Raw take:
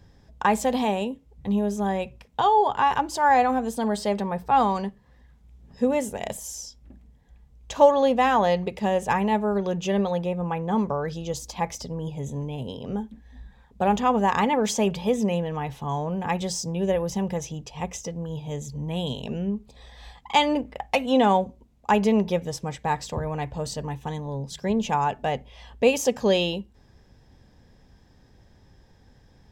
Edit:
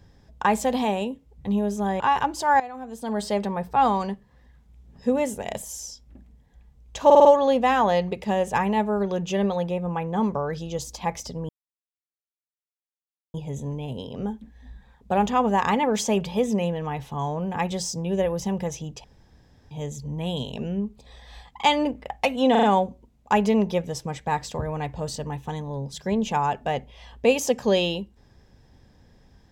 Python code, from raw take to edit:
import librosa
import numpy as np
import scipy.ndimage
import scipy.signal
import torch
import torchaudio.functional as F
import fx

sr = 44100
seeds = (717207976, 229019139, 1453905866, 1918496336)

y = fx.edit(x, sr, fx.cut(start_s=2.0, length_s=0.75),
    fx.fade_in_from(start_s=3.35, length_s=0.63, curve='qua', floor_db=-17.0),
    fx.stutter(start_s=7.8, slice_s=0.05, count=5),
    fx.insert_silence(at_s=12.04, length_s=1.85),
    fx.room_tone_fill(start_s=17.74, length_s=0.67),
    fx.stutter(start_s=21.21, slice_s=0.04, count=4), tone=tone)